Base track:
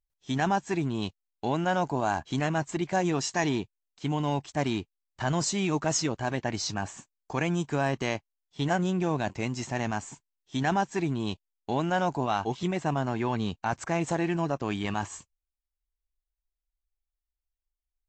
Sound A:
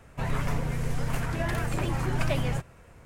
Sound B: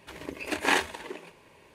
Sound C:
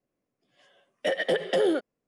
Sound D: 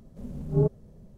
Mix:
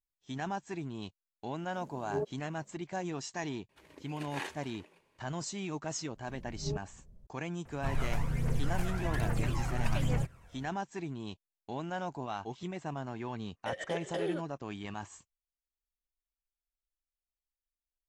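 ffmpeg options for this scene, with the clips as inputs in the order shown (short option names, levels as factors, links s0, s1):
-filter_complex "[4:a]asplit=2[s0][s1];[0:a]volume=0.299[s2];[s0]highpass=320[s3];[s1]asubboost=boost=9:cutoff=100[s4];[1:a]aphaser=in_gain=1:out_gain=1:delay=1.6:decay=0.53:speed=1.2:type=triangular[s5];[s3]atrim=end=1.17,asetpts=PTS-STARTPTS,volume=0.473,afade=t=in:d=0.004:c=hsin,afade=t=out:st=1.166:d=0.004:c=hsin,adelay=1570[s6];[2:a]atrim=end=1.74,asetpts=PTS-STARTPTS,volume=0.158,afade=t=in:d=0.004:c=hsin,afade=t=out:st=1.736:d=0.004:c=hsin,adelay=162729S[s7];[s4]atrim=end=1.17,asetpts=PTS-STARTPTS,volume=0.224,afade=t=in:d=0.004:c=hsin,afade=t=out:st=1.166:d=0.004:c=hsin,adelay=269010S[s8];[s5]atrim=end=3.05,asetpts=PTS-STARTPTS,volume=0.422,afade=t=in:d=0.004:c=hsin,afade=t=out:st=3.046:d=0.004:c=hsin,adelay=7650[s9];[3:a]atrim=end=2.07,asetpts=PTS-STARTPTS,volume=0.251,afade=t=in:d=0.004:c=hsin,afade=t=out:st=2.066:d=0.004:c=hsin,adelay=12610[s10];[s2][s6][s7][s8][s9][s10]amix=inputs=6:normalize=0"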